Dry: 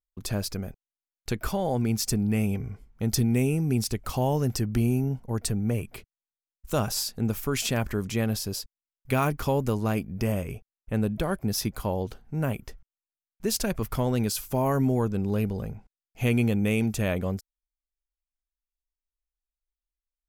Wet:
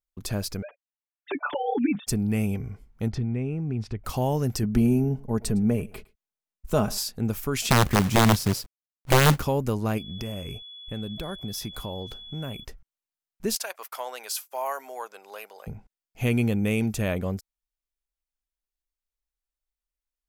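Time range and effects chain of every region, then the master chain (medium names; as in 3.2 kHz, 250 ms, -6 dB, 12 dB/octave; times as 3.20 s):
0.62–2.07 s: formants replaced by sine waves + comb 6.9 ms, depth 90%
3.08–4.04 s: low-pass 2.3 kHz + compression 2:1, threshold -30 dBFS + peaking EQ 100 Hz +5 dB
4.63–6.98 s: tilt shelf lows +3.5 dB, about 1.4 kHz + comb 4.7 ms, depth 40% + delay 109 ms -22.5 dB
7.70–9.42 s: peaking EQ 150 Hz +11 dB 2.5 oct + companded quantiser 4-bit + integer overflow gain 8.5 dB
9.97–12.63 s: compression 3:1, threshold -31 dBFS + whistle 3.4 kHz -41 dBFS
13.55–15.67 s: expander -33 dBFS + high-pass 650 Hz 24 dB/octave
whole clip: none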